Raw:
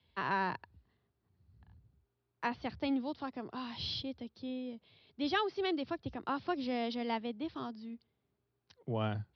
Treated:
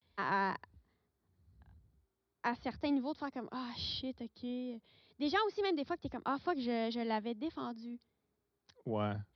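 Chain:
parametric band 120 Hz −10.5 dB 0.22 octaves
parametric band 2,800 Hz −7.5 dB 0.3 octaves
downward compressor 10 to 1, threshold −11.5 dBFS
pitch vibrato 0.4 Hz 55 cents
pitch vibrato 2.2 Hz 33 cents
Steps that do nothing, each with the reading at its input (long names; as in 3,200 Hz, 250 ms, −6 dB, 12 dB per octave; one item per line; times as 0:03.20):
downward compressor, threshold −11.5 dBFS: peak of its input −18.5 dBFS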